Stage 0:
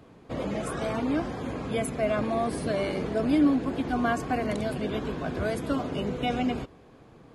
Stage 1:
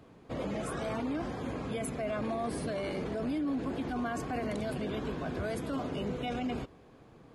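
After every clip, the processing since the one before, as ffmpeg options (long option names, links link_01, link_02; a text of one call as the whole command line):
ffmpeg -i in.wav -af "alimiter=limit=-23.5dB:level=0:latency=1:release=10,volume=-3.5dB" out.wav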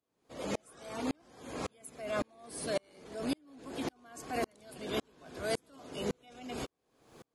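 ffmpeg -i in.wav -af "bass=frequency=250:gain=-8,treble=frequency=4000:gain=13,aeval=exprs='val(0)*pow(10,-40*if(lt(mod(-1.8*n/s,1),2*abs(-1.8)/1000),1-mod(-1.8*n/s,1)/(2*abs(-1.8)/1000),(mod(-1.8*n/s,1)-2*abs(-1.8)/1000)/(1-2*abs(-1.8)/1000))/20)':channel_layout=same,volume=6.5dB" out.wav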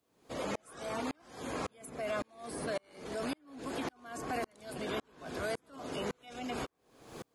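ffmpeg -i in.wav -filter_complex "[0:a]acrossover=split=900|1900[link_01][link_02][link_03];[link_01]acompressor=threshold=-48dB:ratio=4[link_04];[link_02]acompressor=threshold=-51dB:ratio=4[link_05];[link_03]acompressor=threshold=-59dB:ratio=4[link_06];[link_04][link_05][link_06]amix=inputs=3:normalize=0,volume=9dB" out.wav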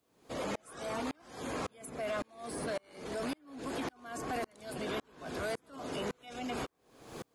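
ffmpeg -i in.wav -af "asoftclip=type=tanh:threshold=-31.5dB,volume=2dB" out.wav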